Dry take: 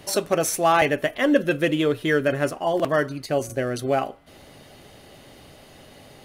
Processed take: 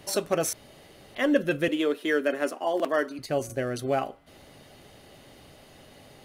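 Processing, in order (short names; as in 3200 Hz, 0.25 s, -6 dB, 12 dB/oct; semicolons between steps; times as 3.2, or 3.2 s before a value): 0.53–1.15 room tone; 1.68–3.19 steep high-pass 220 Hz 36 dB/oct; gain -4 dB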